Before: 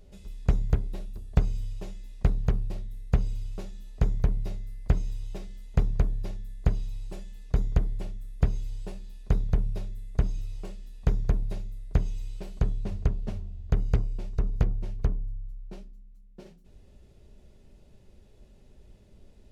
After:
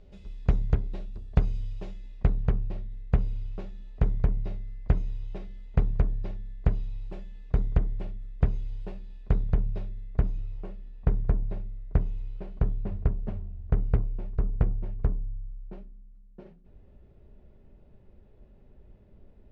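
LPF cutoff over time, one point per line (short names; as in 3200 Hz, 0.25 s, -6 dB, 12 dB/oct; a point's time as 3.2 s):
1.9 s 3800 Hz
2.34 s 2700 Hz
9.84 s 2700 Hz
10.57 s 1800 Hz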